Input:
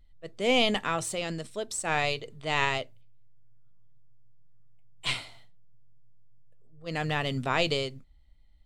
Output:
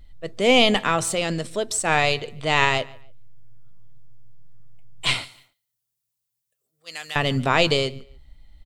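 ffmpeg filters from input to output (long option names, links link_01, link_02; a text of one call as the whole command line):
ffmpeg -i in.wav -filter_complex "[0:a]asettb=1/sr,asplit=3[link_01][link_02][link_03];[link_01]atrim=end=5.244[link_04];[link_02]atrim=start=5.24:end=7.16,asetpts=PTS-STARTPTS,afade=type=in:duration=0.004:curve=qsin,afade=type=out:start_time=1.916:duration=0.004:curve=qsin,aderivative[link_05];[link_03]atrim=start=7.156[link_06];[link_04][link_05]acrossfade=duration=0.004:curve1=hsin:curve2=qsin[link_07];[link_07][link_06]acrossfade=duration=0.004:curve1=qsin:curve2=hsin,asplit=2[link_08][link_09];[link_09]acompressor=threshold=-44dB:ratio=6,volume=-2dB[link_10];[link_08][link_10]amix=inputs=2:normalize=0,asplit=2[link_11][link_12];[link_12]adelay=145,lowpass=frequency=4000:poles=1,volume=-22dB,asplit=2[link_13][link_14];[link_14]adelay=145,lowpass=frequency=4000:poles=1,volume=0.29[link_15];[link_11][link_13][link_15]amix=inputs=3:normalize=0,volume=7dB" out.wav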